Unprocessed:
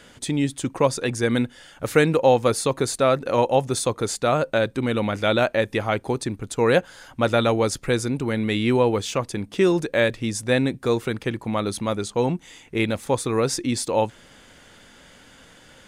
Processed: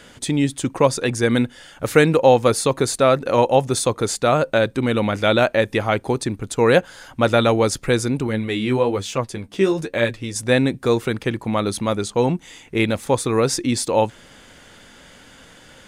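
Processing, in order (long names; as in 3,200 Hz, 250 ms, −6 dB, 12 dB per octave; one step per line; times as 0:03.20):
0:08.27–0:10.36: flanger 1.1 Hz, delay 7.7 ms, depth 7.8 ms, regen +30%
level +3.5 dB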